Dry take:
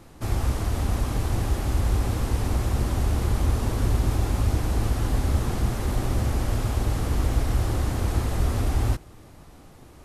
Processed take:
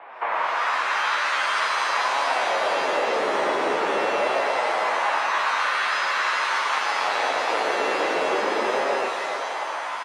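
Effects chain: 6.72–8.14 s: square wave that keeps the level; LFO high-pass sine 0.21 Hz 580–1500 Hz; on a send: delay 116 ms -3.5 dB; on the sum: level rider gain up to 11 dB; tilt shelf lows -5 dB, about 660 Hz; mistuned SSB -190 Hz 510–2700 Hz; in parallel at -12 dB: sine folder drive 4 dB, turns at -3.5 dBFS; on the sum: compression 10:1, threshold -26 dBFS, peak gain reduction 16.5 dB; flange 0.45 Hz, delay 6.9 ms, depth 7.4 ms, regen +37%; pitch-shifted reverb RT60 1.6 s, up +7 st, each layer -2 dB, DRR 5.5 dB; trim +7.5 dB

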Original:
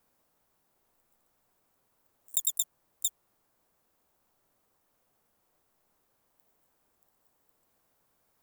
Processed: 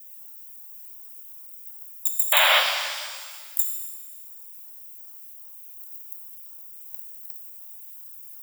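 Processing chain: slices played last to first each 137 ms, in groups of 7; treble shelf 7.2 kHz +11.5 dB; compression 2.5:1, threshold -50 dBFS, peak gain reduction 23 dB; RIAA curve recording; LFO high-pass square 2.7 Hz 810–2400 Hz; painted sound noise, 2.32–2.60 s, 520–4400 Hz -21 dBFS; Butterworth band-stop 4.2 kHz, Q 6.8; pitch-shifted reverb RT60 1.6 s, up +7 st, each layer -8 dB, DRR 2 dB; trim +2 dB

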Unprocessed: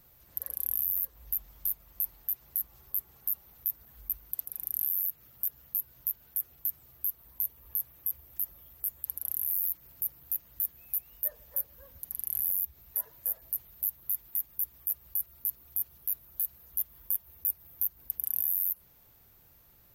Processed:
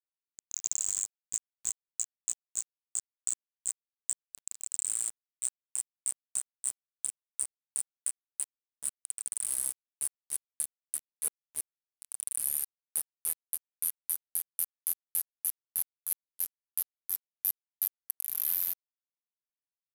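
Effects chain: pitch bend over the whole clip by -10.5 st ending unshifted; small samples zeroed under -33 dBFS

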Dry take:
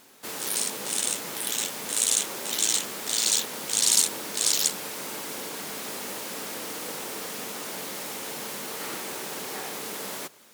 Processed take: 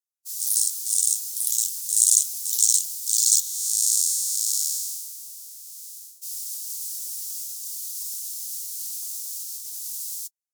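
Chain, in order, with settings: 3.40–6.22 s: spectral blur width 401 ms; inverse Chebyshev band-stop 140–1100 Hz, stop band 80 dB; gate -39 dBFS, range -43 dB; trim +7 dB

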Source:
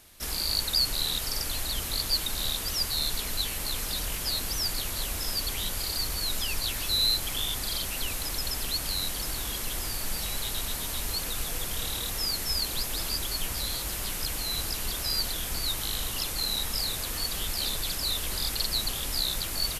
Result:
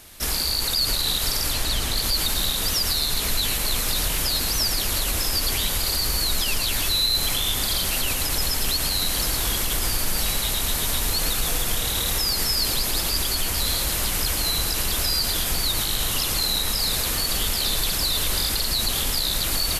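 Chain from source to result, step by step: 1.53–1.97 s: treble shelf 11 kHz -10 dB; peak limiter -22.5 dBFS, peak gain reduction 8.5 dB; two-band feedback delay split 690 Hz, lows 186 ms, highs 110 ms, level -8 dB; trim +8.5 dB

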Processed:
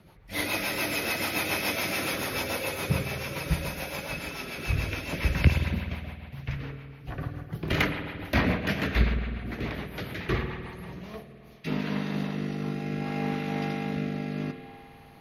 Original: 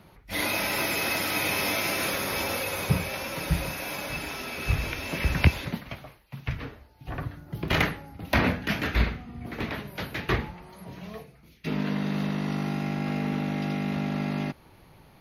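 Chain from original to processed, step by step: spring tank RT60 2.2 s, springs 51 ms, chirp 20 ms, DRR 5 dB; rotary cabinet horn 7 Hz, later 0.6 Hz, at 10.54 s

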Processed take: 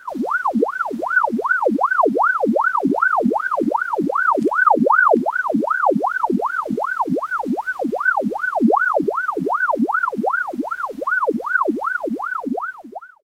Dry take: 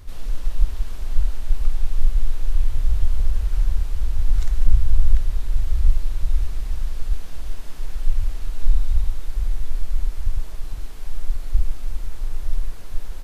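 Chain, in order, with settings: fade out at the end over 1.42 s; in parallel at -1 dB: compression, threshold -20 dBFS, peak gain reduction 15 dB; on the sum: formant shift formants +4 st; ring modulator with a swept carrier 870 Hz, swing 75%, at 2.6 Hz; trim -4 dB

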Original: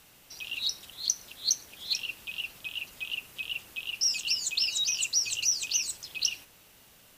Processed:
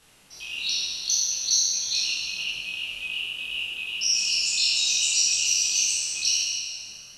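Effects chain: spectral sustain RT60 1.98 s; brick-wall FIR low-pass 12 kHz; chorus voices 4, 1.5 Hz, delay 23 ms, depth 3 ms; trim +1.5 dB

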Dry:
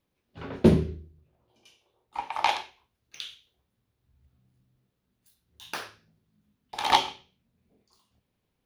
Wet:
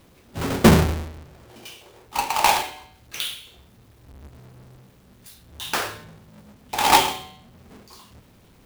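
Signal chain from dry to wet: square wave that keeps the level; de-hum 150.5 Hz, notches 30; power-law waveshaper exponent 0.7

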